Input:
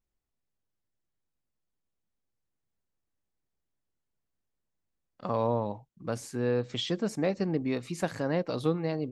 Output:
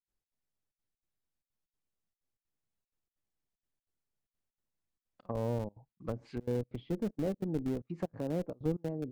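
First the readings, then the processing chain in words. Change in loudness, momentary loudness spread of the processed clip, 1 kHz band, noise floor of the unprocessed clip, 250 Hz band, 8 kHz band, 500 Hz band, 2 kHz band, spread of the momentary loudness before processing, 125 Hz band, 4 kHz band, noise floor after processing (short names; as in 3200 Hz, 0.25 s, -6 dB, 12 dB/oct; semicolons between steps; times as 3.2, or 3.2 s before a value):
-6.0 dB, 7 LU, -11.5 dB, -84 dBFS, -4.5 dB, under -10 dB, -6.5 dB, -14.5 dB, 8 LU, -3.5 dB, -19.5 dB, under -85 dBFS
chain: spectral gain 6.25–6.92, 2000–5100 Hz +10 dB; treble ducked by the level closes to 520 Hz, closed at -28.5 dBFS; in parallel at -3.5 dB: Schmitt trigger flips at -28 dBFS; on the sum: step gate ".xx.xxxxx" 190 bpm -24 dB; gain -4.5 dB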